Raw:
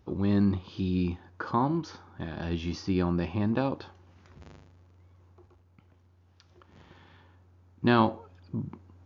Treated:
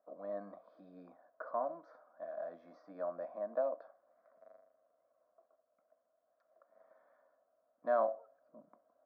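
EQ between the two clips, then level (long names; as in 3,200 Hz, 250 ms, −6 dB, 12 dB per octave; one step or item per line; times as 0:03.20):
four-pole ladder band-pass 690 Hz, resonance 75%
parametric band 710 Hz +2.5 dB
phaser with its sweep stopped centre 570 Hz, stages 8
+3.0 dB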